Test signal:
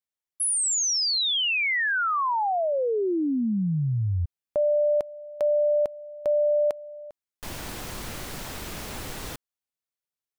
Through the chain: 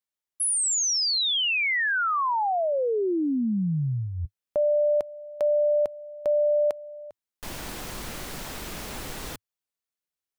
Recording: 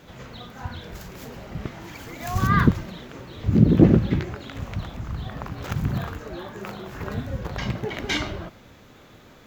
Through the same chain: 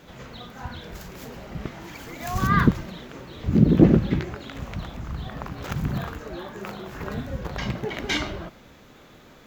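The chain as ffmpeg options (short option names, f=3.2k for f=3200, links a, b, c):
-af "equalizer=f=100:w=4.5:g=-8.5"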